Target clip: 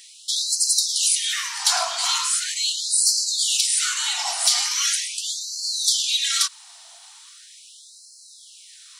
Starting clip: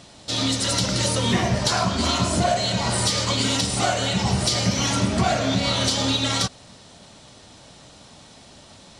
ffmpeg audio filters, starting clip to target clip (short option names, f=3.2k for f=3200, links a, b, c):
-af "aemphasis=mode=production:type=bsi,afftfilt=real='re*gte(b*sr/1024,620*pow(4100/620,0.5+0.5*sin(2*PI*0.4*pts/sr)))':imag='im*gte(b*sr/1024,620*pow(4100/620,0.5+0.5*sin(2*PI*0.4*pts/sr)))':win_size=1024:overlap=0.75,volume=-1.5dB"